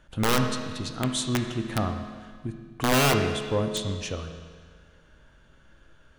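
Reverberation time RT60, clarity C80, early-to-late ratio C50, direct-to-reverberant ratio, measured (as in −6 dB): 1.7 s, 7.5 dB, 6.0 dB, 4.0 dB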